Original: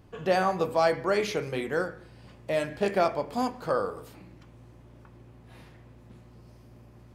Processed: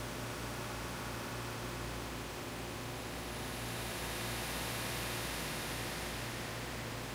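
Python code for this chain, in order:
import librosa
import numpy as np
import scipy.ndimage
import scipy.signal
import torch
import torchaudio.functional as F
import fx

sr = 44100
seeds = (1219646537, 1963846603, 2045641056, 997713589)

y = fx.paulstretch(x, sr, seeds[0], factor=7.2, window_s=0.5, from_s=4.92)
y = fx.spectral_comp(y, sr, ratio=2.0)
y = F.gain(torch.from_numpy(y), 12.0).numpy()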